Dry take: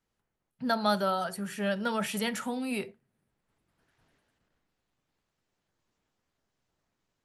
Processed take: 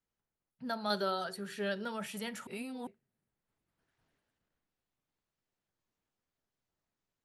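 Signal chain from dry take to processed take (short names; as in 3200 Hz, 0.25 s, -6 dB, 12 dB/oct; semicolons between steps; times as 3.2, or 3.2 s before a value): 0.9–1.85 fifteen-band EQ 400 Hz +10 dB, 1600 Hz +5 dB, 4000 Hz +11 dB; 2.47–2.87 reverse; gain -9 dB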